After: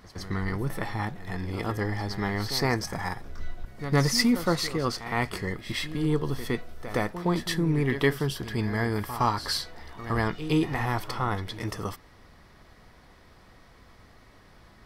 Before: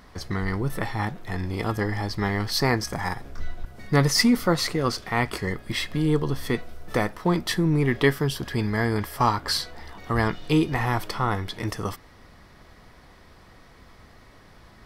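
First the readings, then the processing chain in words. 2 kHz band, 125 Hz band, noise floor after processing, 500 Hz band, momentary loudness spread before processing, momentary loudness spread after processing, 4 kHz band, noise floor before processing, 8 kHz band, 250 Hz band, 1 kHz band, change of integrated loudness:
−3.5 dB, −3.0 dB, −55 dBFS, −3.0 dB, 10 LU, 10 LU, −3.0 dB, −51 dBFS, −3.0 dB, −3.0 dB, −3.0 dB, −3.5 dB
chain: backwards echo 114 ms −12 dB
level −3.5 dB

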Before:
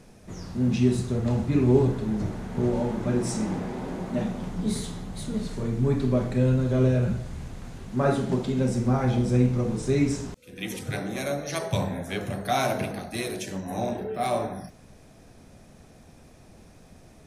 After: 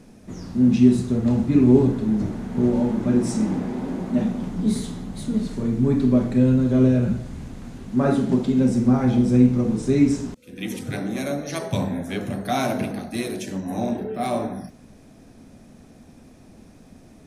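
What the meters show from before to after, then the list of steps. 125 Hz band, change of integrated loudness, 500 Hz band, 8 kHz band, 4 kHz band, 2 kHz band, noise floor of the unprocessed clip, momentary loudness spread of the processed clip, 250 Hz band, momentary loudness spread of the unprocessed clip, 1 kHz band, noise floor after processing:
+1.5 dB, +5.0 dB, +2.0 dB, 0.0 dB, 0.0 dB, 0.0 dB, −52 dBFS, 13 LU, +8.0 dB, 12 LU, +0.5 dB, −49 dBFS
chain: parametric band 250 Hz +9 dB 0.81 octaves

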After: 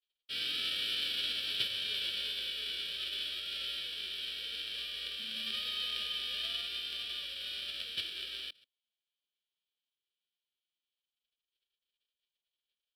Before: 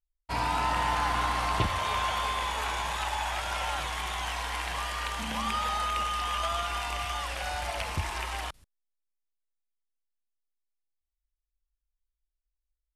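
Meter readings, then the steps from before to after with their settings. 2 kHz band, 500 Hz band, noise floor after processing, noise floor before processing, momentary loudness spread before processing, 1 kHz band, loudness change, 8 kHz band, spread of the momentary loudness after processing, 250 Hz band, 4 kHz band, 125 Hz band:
−9.0 dB, −17.5 dB, below −85 dBFS, below −85 dBFS, 5 LU, −29.5 dB, −4.5 dB, −13.0 dB, 6 LU, −16.5 dB, +3.5 dB, below −25 dB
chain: spectral envelope flattened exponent 0.1
formant filter i
parametric band 4,800 Hz +8.5 dB 1.6 octaves
phaser with its sweep stopped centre 1,400 Hz, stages 8
level +8.5 dB

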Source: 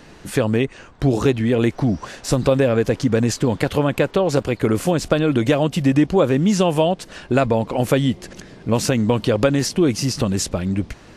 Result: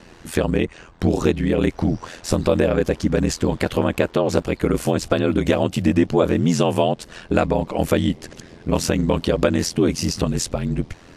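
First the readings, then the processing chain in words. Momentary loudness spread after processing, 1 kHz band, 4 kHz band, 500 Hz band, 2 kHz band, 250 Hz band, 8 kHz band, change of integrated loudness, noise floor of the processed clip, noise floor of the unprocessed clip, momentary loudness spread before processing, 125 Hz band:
6 LU, −1.0 dB, −1.5 dB, −1.5 dB, −1.5 dB, −1.5 dB, −1.5 dB, −1.5 dB, −46 dBFS, −44 dBFS, 6 LU, −2.5 dB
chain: ring modulation 42 Hz
level +1.5 dB

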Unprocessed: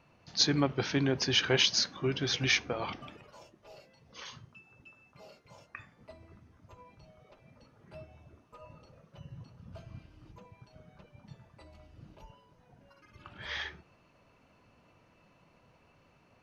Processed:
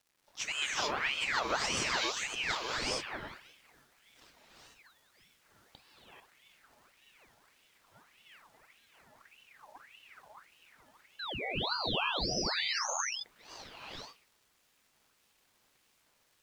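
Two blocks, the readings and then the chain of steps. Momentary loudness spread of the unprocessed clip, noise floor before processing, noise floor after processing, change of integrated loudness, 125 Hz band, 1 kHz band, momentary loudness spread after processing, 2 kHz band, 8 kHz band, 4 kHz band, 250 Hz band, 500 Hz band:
21 LU, −66 dBFS, −72 dBFS, −4.0 dB, −11.5 dB, +6.0 dB, 16 LU, +1.0 dB, can't be measured, −3.0 dB, −9.5 dB, −4.5 dB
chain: mu-law and A-law mismatch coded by A
high-shelf EQ 5,200 Hz −9.5 dB
surface crackle 420 per second −53 dBFS
bit reduction 11 bits
sound drawn into the spectrogram rise, 0:11.19–0:12.79, 1,200–4,300 Hz −31 dBFS
harmonic generator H 6 −32 dB, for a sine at −6 dBFS
reverb whose tail is shaped and stops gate 460 ms rising, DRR −5 dB
ring modulator whose carrier an LFO sweeps 1,800 Hz, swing 60%, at 1.7 Hz
level −5.5 dB

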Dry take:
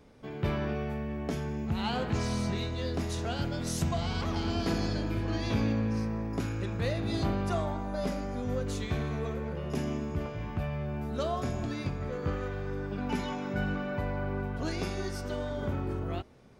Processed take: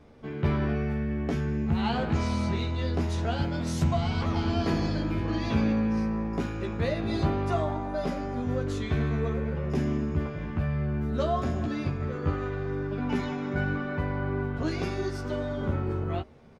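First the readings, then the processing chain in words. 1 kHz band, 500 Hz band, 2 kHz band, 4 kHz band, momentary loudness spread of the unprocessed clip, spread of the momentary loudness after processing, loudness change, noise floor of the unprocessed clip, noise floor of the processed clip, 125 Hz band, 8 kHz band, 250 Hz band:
+3.5 dB, +3.0 dB, +3.0 dB, 0.0 dB, 5 LU, 5 LU, +4.0 dB, −39 dBFS, −35 dBFS, +4.0 dB, −4.0 dB, +4.5 dB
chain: low-pass filter 3,000 Hz 6 dB per octave
double-tracking delay 13 ms −4 dB
level +2.5 dB

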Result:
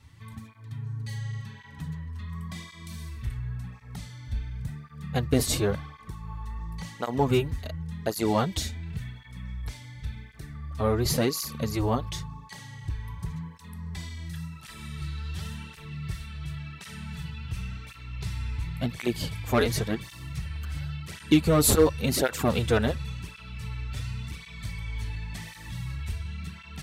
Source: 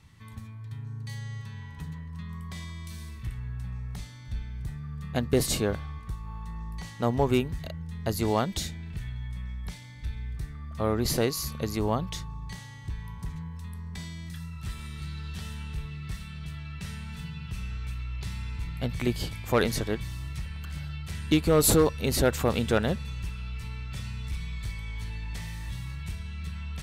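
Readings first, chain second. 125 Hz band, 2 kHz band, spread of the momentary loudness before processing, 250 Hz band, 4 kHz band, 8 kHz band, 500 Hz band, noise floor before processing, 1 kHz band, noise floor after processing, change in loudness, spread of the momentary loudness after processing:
+1.0 dB, +1.0 dB, 14 LU, +1.5 dB, +1.0 dB, +1.0 dB, +0.5 dB, −43 dBFS, +1.0 dB, −48 dBFS, +1.0 dB, 16 LU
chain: through-zero flanger with one copy inverted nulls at 0.92 Hz, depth 6.4 ms
level +4 dB

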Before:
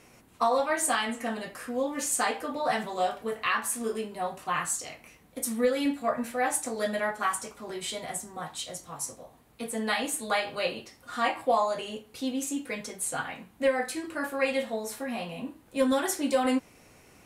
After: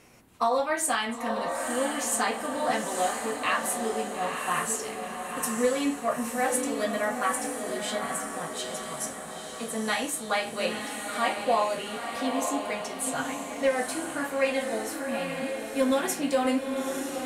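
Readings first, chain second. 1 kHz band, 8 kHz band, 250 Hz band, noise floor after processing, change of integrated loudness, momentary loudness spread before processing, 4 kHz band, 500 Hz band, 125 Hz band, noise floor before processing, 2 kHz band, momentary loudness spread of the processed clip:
+1.5 dB, +1.5 dB, +1.5 dB, −39 dBFS, +1.0 dB, 11 LU, +1.5 dB, +1.5 dB, +1.5 dB, −58 dBFS, +1.5 dB, 7 LU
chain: feedback delay with all-pass diffusion 921 ms, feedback 53%, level −5 dB

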